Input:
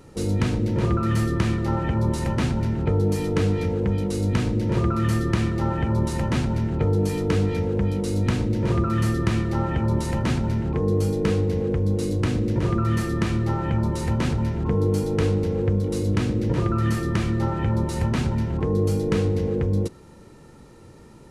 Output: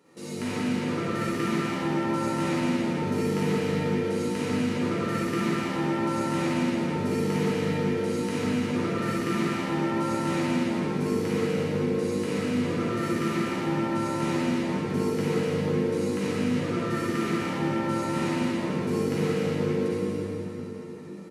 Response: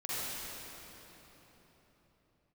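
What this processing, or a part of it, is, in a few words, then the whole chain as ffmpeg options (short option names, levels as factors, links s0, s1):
PA in a hall: -filter_complex "[0:a]highpass=f=170:w=0.5412,highpass=f=170:w=1.3066,equalizer=f=2200:t=o:w=0.8:g=4,aecho=1:1:174:0.501[s0];[1:a]atrim=start_sample=2205[s1];[s0][s1]afir=irnorm=-1:irlink=0,asplit=2[s2][s3];[s3]adelay=12,volume=0.501[s4];[s2][s4]amix=inputs=2:normalize=0,volume=0.422"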